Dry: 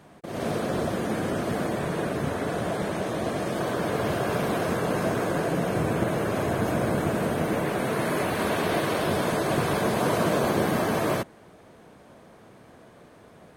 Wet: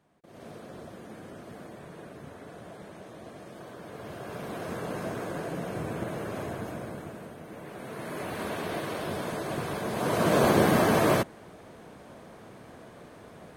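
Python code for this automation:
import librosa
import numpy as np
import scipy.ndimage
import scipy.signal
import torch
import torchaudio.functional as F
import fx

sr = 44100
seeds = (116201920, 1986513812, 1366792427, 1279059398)

y = fx.gain(x, sr, db=fx.line((3.83, -17.0), (4.78, -8.5), (6.42, -8.5), (7.42, -19.0), (8.34, -8.0), (9.86, -8.0), (10.42, 2.5)))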